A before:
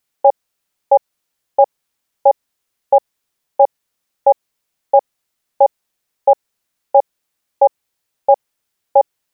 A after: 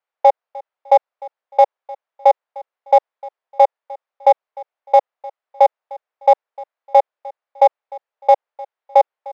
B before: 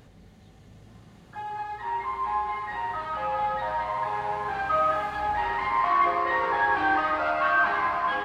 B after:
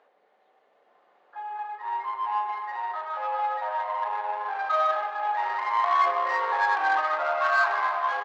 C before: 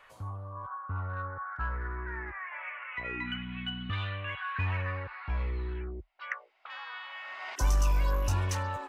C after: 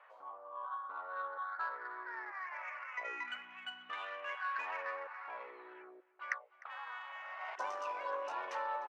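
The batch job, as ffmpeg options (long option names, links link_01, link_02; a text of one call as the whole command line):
ffmpeg -i in.wav -af "adynamicsmooth=sensitivity=1:basefreq=1600,highpass=frequency=540:width=0.5412,highpass=frequency=540:width=1.3066,aecho=1:1:303|606:0.0891|0.0276,volume=1dB" out.wav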